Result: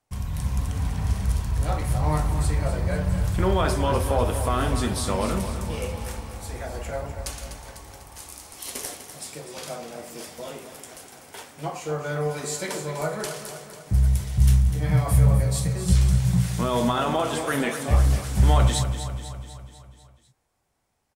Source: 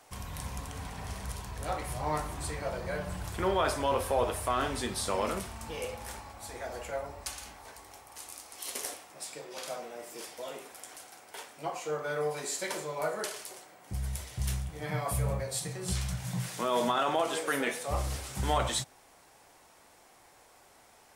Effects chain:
bass and treble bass +13 dB, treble +1 dB
noise gate with hold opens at −43 dBFS
automatic gain control gain up to 3 dB
on a send: repeating echo 248 ms, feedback 56%, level −10 dB

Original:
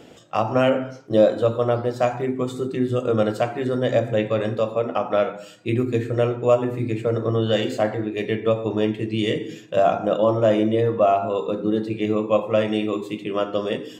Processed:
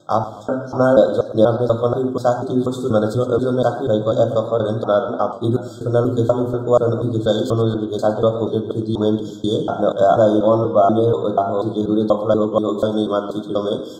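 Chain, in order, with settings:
slices reordered back to front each 242 ms, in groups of 2
linear-phase brick-wall band-stop 1,600–3,200 Hz
feedback echo with a swinging delay time 114 ms, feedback 49%, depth 89 cents, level −14.5 dB
level +4 dB

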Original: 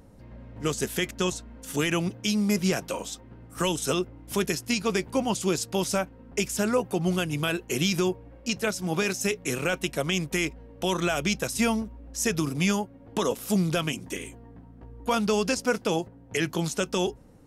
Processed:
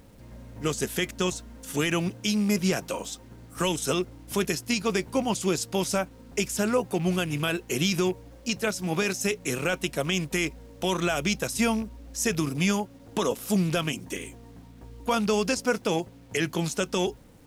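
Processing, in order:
loose part that buzzes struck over −30 dBFS, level −35 dBFS
bit reduction 10 bits

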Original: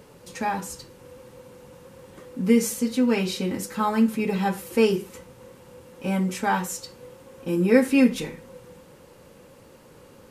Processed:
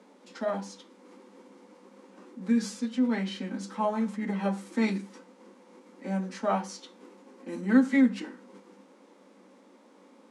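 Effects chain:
formants moved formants −4 semitones
Chebyshev high-pass with heavy ripple 190 Hz, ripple 6 dB
high-frequency loss of the air 51 metres
level −1.5 dB

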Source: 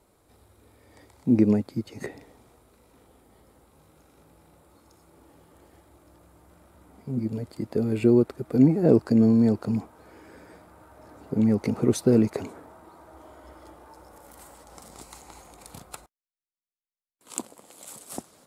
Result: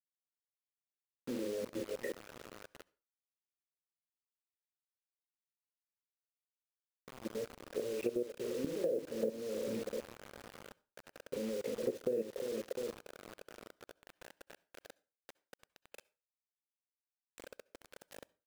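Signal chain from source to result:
formant filter e
dynamic equaliser 480 Hz, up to +4 dB, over −49 dBFS, Q 1.1
double-tracking delay 41 ms −4.5 dB
rotating-speaker cabinet horn 6.7 Hz, later 1 Hz, at 0:03.65
repeating echo 351 ms, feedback 48%, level −12 dB
output level in coarse steps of 15 dB
low-shelf EQ 260 Hz +2 dB
bit reduction 9 bits
downward compressor 6 to 1, threshold −39 dBFS, peak gain reduction 12 dB
on a send at −23 dB: convolution reverb RT60 0.30 s, pre-delay 57 ms
on the sum: level +7 dB

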